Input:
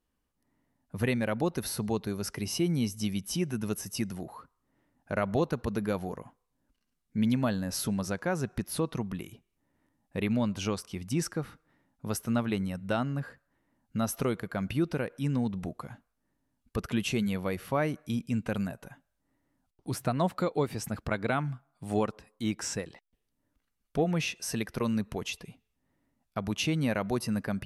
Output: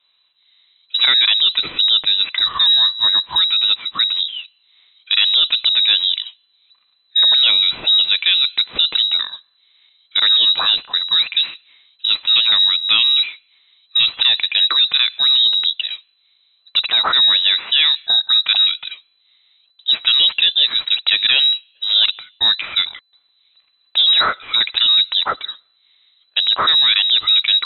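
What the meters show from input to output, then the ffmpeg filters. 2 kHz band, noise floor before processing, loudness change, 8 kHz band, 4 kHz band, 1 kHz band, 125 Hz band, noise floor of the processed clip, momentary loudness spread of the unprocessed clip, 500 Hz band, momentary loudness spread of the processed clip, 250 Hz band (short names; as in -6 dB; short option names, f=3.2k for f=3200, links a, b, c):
+16.0 dB, -80 dBFS, +18.5 dB, under -40 dB, +33.0 dB, +9.5 dB, under -15 dB, -62 dBFS, 10 LU, n/a, 9 LU, under -15 dB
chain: -af "apsyclip=27dB,lowpass=f=3.4k:t=q:w=0.5098,lowpass=f=3.4k:t=q:w=0.6013,lowpass=f=3.4k:t=q:w=0.9,lowpass=f=3.4k:t=q:w=2.563,afreqshift=-4000,volume=-8.5dB"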